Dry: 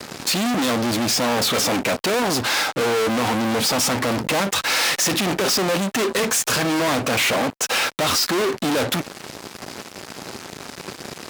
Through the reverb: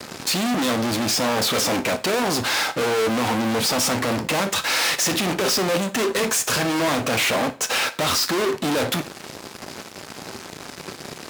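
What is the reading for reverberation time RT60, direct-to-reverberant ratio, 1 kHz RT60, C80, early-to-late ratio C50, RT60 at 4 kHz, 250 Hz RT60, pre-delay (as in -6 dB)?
0.40 s, 10.5 dB, 0.40 s, 22.0 dB, 16.5 dB, 0.40 s, 0.40 s, 7 ms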